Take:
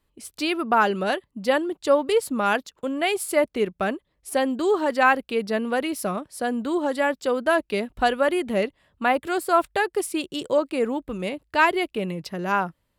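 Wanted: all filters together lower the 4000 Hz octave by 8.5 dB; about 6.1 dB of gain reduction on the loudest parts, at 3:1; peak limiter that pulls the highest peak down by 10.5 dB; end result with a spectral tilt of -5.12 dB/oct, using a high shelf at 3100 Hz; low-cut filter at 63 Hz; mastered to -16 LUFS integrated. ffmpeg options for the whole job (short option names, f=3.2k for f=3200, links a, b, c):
-af "highpass=63,highshelf=f=3.1k:g=-6.5,equalizer=f=4k:t=o:g=-8,acompressor=threshold=-23dB:ratio=3,volume=17dB,alimiter=limit=-7dB:level=0:latency=1"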